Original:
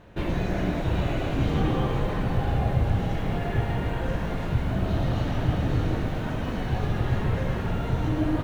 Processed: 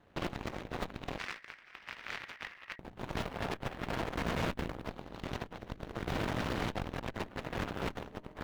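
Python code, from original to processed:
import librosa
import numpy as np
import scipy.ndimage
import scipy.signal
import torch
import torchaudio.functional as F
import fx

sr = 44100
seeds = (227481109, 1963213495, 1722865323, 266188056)

y = fx.highpass(x, sr, hz=76.0, slope=6)
y = fx.over_compress(y, sr, threshold_db=-31.0, ratio=-0.5)
y = fx.cheby_harmonics(y, sr, harmonics=(5, 6, 7), levels_db=(-42, -15, -15), full_scale_db=-15.5)
y = np.clip(y, -10.0 ** (-21.5 / 20.0), 10.0 ** (-21.5 / 20.0))
y = fx.ring_mod(y, sr, carrier_hz=1900.0, at=(1.18, 2.79))
y = F.gain(torch.from_numpy(y), -4.0).numpy()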